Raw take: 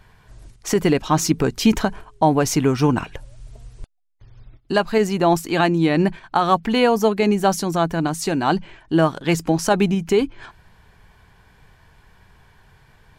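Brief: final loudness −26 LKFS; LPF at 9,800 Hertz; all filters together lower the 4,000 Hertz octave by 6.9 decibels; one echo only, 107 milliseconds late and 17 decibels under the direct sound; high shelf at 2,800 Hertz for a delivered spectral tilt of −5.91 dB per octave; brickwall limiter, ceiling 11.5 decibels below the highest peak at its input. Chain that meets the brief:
low-pass filter 9,800 Hz
high-shelf EQ 2,800 Hz −5 dB
parametric band 4,000 Hz −5.5 dB
brickwall limiter −16 dBFS
single-tap delay 107 ms −17 dB
level +0.5 dB

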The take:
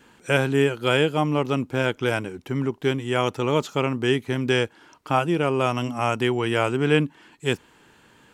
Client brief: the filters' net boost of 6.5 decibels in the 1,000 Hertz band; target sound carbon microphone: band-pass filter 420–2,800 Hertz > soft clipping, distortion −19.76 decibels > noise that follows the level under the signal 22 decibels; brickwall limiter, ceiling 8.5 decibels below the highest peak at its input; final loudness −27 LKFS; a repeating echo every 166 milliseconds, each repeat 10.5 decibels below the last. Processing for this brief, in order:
parametric band 1,000 Hz +9 dB
brickwall limiter −9.5 dBFS
band-pass filter 420–2,800 Hz
repeating echo 166 ms, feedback 30%, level −10.5 dB
soft clipping −12 dBFS
noise that follows the level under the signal 22 dB
level −0.5 dB

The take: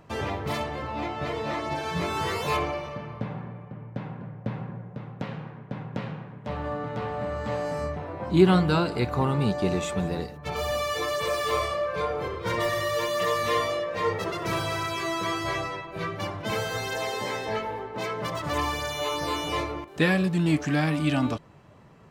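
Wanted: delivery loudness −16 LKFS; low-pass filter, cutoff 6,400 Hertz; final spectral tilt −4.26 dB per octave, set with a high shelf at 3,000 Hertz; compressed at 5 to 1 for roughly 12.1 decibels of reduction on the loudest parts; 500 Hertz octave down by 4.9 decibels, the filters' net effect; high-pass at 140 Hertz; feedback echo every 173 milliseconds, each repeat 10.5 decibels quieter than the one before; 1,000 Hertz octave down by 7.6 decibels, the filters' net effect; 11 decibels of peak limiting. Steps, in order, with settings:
high-pass filter 140 Hz
low-pass filter 6,400 Hz
parametric band 500 Hz −4 dB
parametric band 1,000 Hz −7.5 dB
high-shelf EQ 3,000 Hz −6.5 dB
downward compressor 5 to 1, threshold −29 dBFS
brickwall limiter −29 dBFS
repeating echo 173 ms, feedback 30%, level −10.5 dB
level +21.5 dB

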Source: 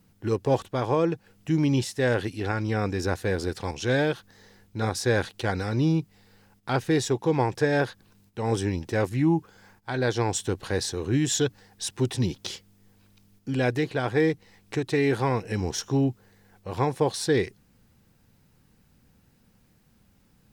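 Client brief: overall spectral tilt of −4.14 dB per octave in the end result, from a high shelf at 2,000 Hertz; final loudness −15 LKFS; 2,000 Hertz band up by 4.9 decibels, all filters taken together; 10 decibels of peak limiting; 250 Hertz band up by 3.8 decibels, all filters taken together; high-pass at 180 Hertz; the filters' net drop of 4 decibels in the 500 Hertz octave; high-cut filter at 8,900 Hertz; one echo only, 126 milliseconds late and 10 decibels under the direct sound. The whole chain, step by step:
high-pass filter 180 Hz
low-pass filter 8,900 Hz
parametric band 250 Hz +9 dB
parametric band 500 Hz −8.5 dB
high-shelf EQ 2,000 Hz +4 dB
parametric band 2,000 Hz +4.5 dB
brickwall limiter −18 dBFS
single-tap delay 126 ms −10 dB
level +14 dB

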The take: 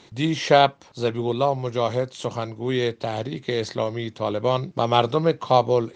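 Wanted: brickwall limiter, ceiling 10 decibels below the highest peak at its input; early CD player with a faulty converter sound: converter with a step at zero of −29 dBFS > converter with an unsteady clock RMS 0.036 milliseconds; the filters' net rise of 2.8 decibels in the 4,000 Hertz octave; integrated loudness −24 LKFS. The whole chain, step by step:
parametric band 4,000 Hz +3.5 dB
brickwall limiter −11 dBFS
converter with a step at zero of −29 dBFS
converter with an unsteady clock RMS 0.036 ms
level −0.5 dB

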